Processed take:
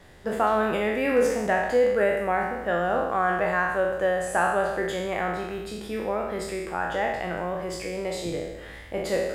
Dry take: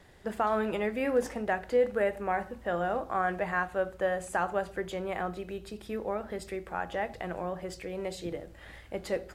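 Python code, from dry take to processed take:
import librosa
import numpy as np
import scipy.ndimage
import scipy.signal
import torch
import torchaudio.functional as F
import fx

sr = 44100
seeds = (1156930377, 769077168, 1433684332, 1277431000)

y = fx.spec_trails(x, sr, decay_s=1.05)
y = y * librosa.db_to_amplitude(3.5)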